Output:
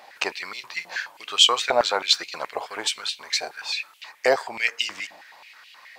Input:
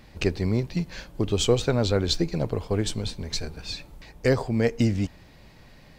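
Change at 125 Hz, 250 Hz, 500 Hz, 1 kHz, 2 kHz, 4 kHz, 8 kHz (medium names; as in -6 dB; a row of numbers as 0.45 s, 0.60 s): under -25 dB, -17.5 dB, -1.5 dB, +10.5 dB, +9.5 dB, +10.5 dB, +5.5 dB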